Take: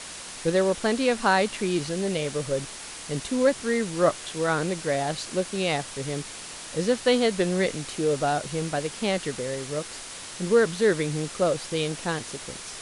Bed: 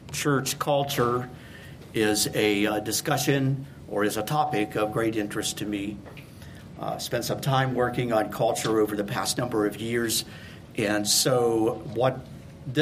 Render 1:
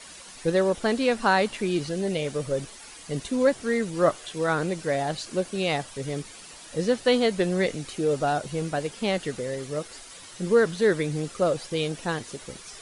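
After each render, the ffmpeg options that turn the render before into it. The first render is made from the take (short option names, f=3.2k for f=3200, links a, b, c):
-af "afftdn=nr=10:nf=-40"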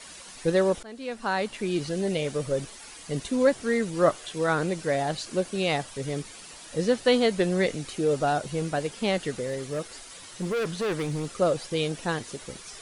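-filter_complex "[0:a]asettb=1/sr,asplit=3[a][b][c];[a]atrim=end=9.454[d];[b]atrim=start=9.45:end=11.32,asetpts=PTS-STARTPTS,afade=t=in:d=0.004:c=qsin,afade=t=out:st=1.866:d=0.004:c=qsin,volume=25dB,asoftclip=hard,volume=-25dB[e];[c]atrim=start=11.316[f];[d][e]acrossfade=d=0.004:c1=hsin:c2=qsin[g];[g][f]acrossfade=d=0.004:c1=qsin:c2=hsin,asplit=2[h][i];[h]atrim=end=0.83,asetpts=PTS-STARTPTS,afade=t=out:st=0.826:d=0.004:c=hsin:silence=0.0707946[j];[i]atrim=start=0.83,asetpts=PTS-STARTPTS,afade=t=in:d=1.11:silence=0.0707946[k];[j][k]concat=n=2:v=0:a=1"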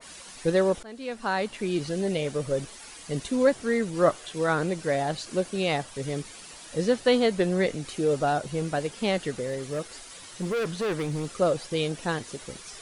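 -af "adynamicequalizer=threshold=0.0126:dfrequency=1900:dqfactor=0.7:tfrequency=1900:tqfactor=0.7:attack=5:release=100:ratio=0.375:range=1.5:mode=cutabove:tftype=highshelf"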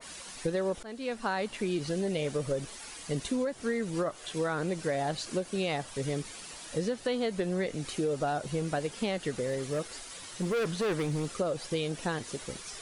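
-af "alimiter=limit=-16dB:level=0:latency=1:release=222,acompressor=threshold=-27dB:ratio=6"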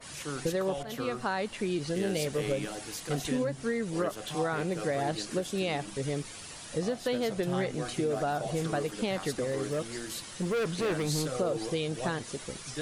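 -filter_complex "[1:a]volume=-14dB[a];[0:a][a]amix=inputs=2:normalize=0"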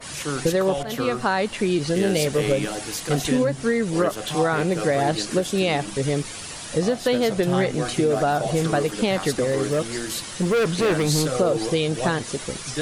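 -af "volume=9.5dB"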